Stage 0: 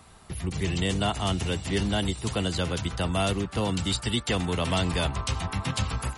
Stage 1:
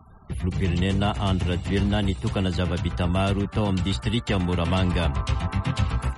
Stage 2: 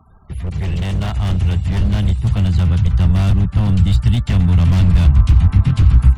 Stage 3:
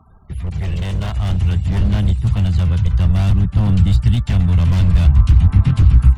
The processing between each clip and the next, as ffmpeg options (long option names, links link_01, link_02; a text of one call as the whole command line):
ffmpeg -i in.wav -af "afftfilt=real='re*gte(hypot(re,im),0.00355)':imag='im*gte(hypot(re,im),0.00355)':win_size=1024:overlap=0.75,bass=frequency=250:gain=4,treble=frequency=4000:gain=-10,volume=1.5dB" out.wav
ffmpeg -i in.wav -af "aeval=exprs='0.106*(abs(mod(val(0)/0.106+3,4)-2)-1)':channel_layout=same,asubboost=boost=11.5:cutoff=140" out.wav
ffmpeg -i in.wav -af "aphaser=in_gain=1:out_gain=1:delay=2:decay=0.23:speed=0.53:type=sinusoidal,volume=-2dB" out.wav